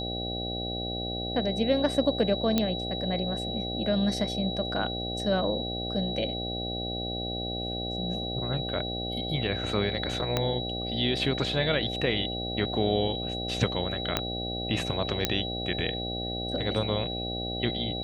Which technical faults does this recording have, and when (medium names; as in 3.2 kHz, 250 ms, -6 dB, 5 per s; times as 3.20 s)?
buzz 60 Hz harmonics 13 -35 dBFS
whine 3.9 kHz -34 dBFS
2.58 s: pop -10 dBFS
10.37 s: pop -11 dBFS
14.17 s: pop -9 dBFS
15.25 s: pop -7 dBFS